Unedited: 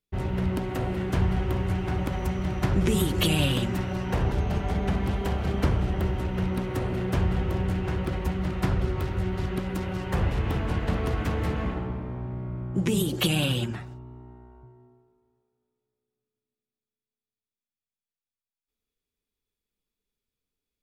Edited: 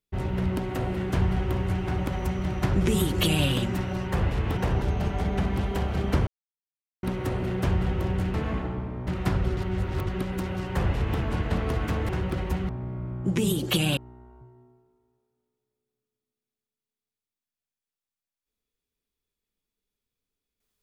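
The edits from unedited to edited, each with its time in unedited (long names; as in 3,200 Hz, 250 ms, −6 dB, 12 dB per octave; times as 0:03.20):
0:05.77–0:06.53: silence
0:07.84–0:08.44: swap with 0:11.46–0:12.19
0:08.94–0:09.44: reverse
0:10.07–0:10.57: duplicate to 0:04.07
0:13.47–0:14.19: remove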